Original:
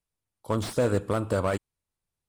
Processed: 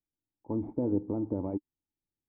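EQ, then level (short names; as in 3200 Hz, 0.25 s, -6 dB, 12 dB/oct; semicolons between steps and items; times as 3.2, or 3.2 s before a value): vocal tract filter u; air absorption 170 m; +5.5 dB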